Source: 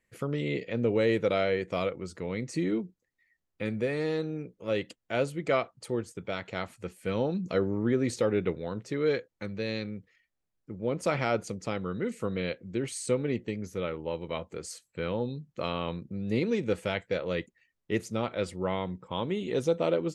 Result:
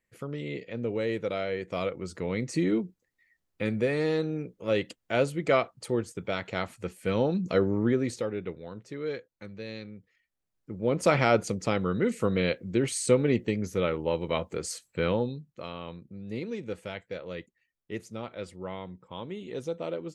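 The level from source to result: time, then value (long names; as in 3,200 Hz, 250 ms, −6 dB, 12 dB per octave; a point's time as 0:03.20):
0:01.46 −4.5 dB
0:02.18 +3 dB
0:07.83 +3 dB
0:08.34 −6.5 dB
0:09.96 −6.5 dB
0:11.05 +5.5 dB
0:15.11 +5.5 dB
0:15.60 −7 dB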